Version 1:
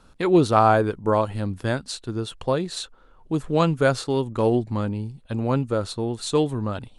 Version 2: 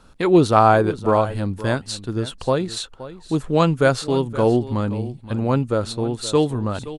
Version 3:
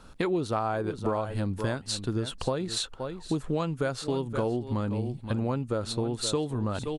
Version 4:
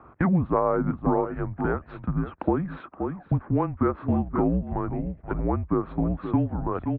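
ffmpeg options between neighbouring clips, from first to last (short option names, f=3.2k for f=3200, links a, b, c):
-af "aecho=1:1:522:0.168,volume=3dB"
-af "acompressor=threshold=-25dB:ratio=10"
-af "highpass=f=200:t=q:w=0.5412,highpass=f=200:t=q:w=1.307,lowpass=f=2k:t=q:w=0.5176,lowpass=f=2k:t=q:w=0.7071,lowpass=f=2k:t=q:w=1.932,afreqshift=-180,highpass=45,volume=6.5dB"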